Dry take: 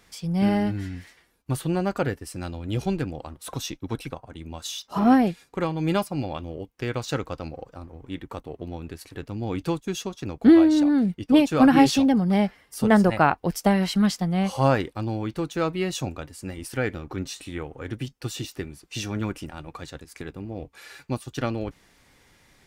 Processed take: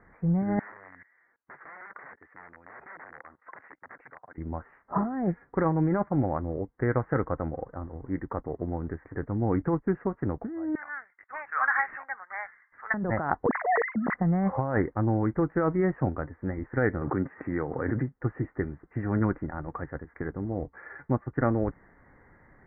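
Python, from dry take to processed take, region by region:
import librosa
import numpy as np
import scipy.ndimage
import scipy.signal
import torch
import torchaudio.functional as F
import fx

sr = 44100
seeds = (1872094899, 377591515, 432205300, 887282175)

y = fx.chain(x, sr, fx.overflow_wrap(gain_db=26.5),
    fx.level_steps(step_db=23),
    fx.weighting(curve='ITU-R 468'), at=(0.59, 4.38))
y = fx.chain(y, sr, fx.highpass(hz=1300.0, slope=24),
    fx.leveller(passes=1), at=(10.75, 12.94))
y = fx.chain(y, sr, fx.sine_speech(),
    fx.transient(attack_db=-11, sustain_db=-1),
    fx.sustainer(db_per_s=32.0), at=(13.46, 14.14))
y = fx.chain(y, sr, fx.highpass(hz=110.0, slope=12),
    fx.pre_swell(db_per_s=32.0), at=(17.01, 18.14))
y = scipy.signal.sosfilt(scipy.signal.butter(16, 2000.0, 'lowpass', fs=sr, output='sos'), y)
y = fx.over_compress(y, sr, threshold_db=-25.0, ratio=-1.0)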